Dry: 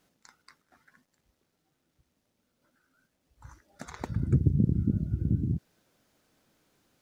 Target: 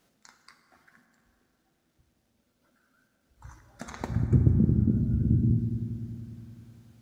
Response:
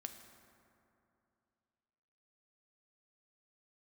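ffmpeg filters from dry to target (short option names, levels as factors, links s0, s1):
-filter_complex "[0:a]asplit=3[s0][s1][s2];[s0]afade=t=out:st=4.23:d=0.02[s3];[s1]agate=range=0.0224:threshold=0.0631:ratio=3:detection=peak,afade=t=in:st=4.23:d=0.02,afade=t=out:st=4.93:d=0.02[s4];[s2]afade=t=in:st=4.93:d=0.02[s5];[s3][s4][s5]amix=inputs=3:normalize=0[s6];[1:a]atrim=start_sample=2205[s7];[s6][s7]afir=irnorm=-1:irlink=0,volume=2.11"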